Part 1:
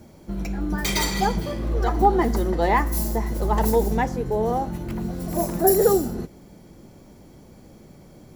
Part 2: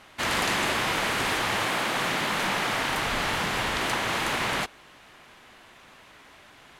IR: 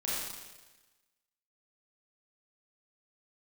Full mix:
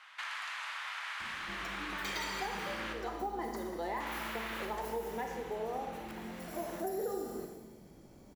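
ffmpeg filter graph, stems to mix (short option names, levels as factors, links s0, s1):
-filter_complex "[0:a]acompressor=threshold=0.0708:ratio=2,adelay=1200,volume=0.224,asplit=2[s0][s1];[s1]volume=0.531[s2];[1:a]highpass=f=1100:w=0.5412,highpass=f=1100:w=1.3066,aemphasis=mode=reproduction:type=75kf,acompressor=threshold=0.00891:ratio=6,volume=0.794,asplit=3[s3][s4][s5];[s3]atrim=end=2.93,asetpts=PTS-STARTPTS,afade=t=out:st=2.926:d=0.004:c=hsin[s6];[s4]atrim=start=2.93:end=4,asetpts=PTS-STARTPTS,volume=0[s7];[s5]atrim=start=4,asetpts=PTS-STARTPTS,afade=t=in:d=0.004:c=hsin[s8];[s6][s7][s8]concat=n=3:v=0:a=1,asplit=2[s9][s10];[s10]volume=0.501[s11];[2:a]atrim=start_sample=2205[s12];[s2][s11]amix=inputs=2:normalize=0[s13];[s13][s12]afir=irnorm=-1:irlink=0[s14];[s0][s9][s14]amix=inputs=3:normalize=0,acrossover=split=290|5100[s15][s16][s17];[s15]acompressor=threshold=0.002:ratio=4[s18];[s16]acompressor=threshold=0.02:ratio=4[s19];[s17]acompressor=threshold=0.00251:ratio=4[s20];[s18][s19][s20]amix=inputs=3:normalize=0"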